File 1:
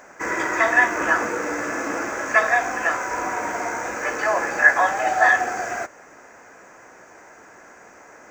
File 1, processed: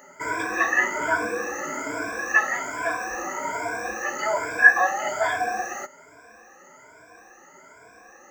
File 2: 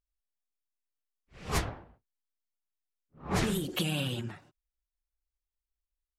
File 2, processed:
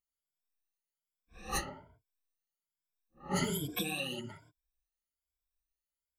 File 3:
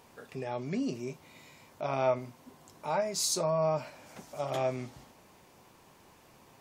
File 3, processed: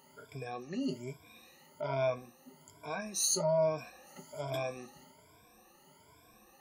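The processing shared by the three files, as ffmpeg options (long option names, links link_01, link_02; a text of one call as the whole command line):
ffmpeg -i in.wav -af "afftfilt=real='re*pow(10,24/40*sin(2*PI*(1.7*log(max(b,1)*sr/1024/100)/log(2)-(1.2)*(pts-256)/sr)))':imag='im*pow(10,24/40*sin(2*PI*(1.7*log(max(b,1)*sr/1024/100)/log(2)-(1.2)*(pts-256)/sr)))':win_size=1024:overlap=0.75,highshelf=frequency=8700:gain=6,volume=-9dB" out.wav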